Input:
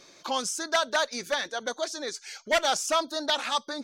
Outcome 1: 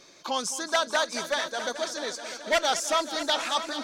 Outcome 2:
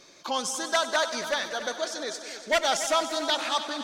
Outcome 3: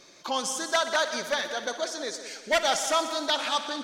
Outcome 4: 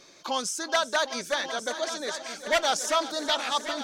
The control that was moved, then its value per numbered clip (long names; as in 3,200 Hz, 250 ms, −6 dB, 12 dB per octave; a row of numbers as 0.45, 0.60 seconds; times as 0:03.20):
echo machine with several playback heads, delay time: 216, 95, 61, 379 milliseconds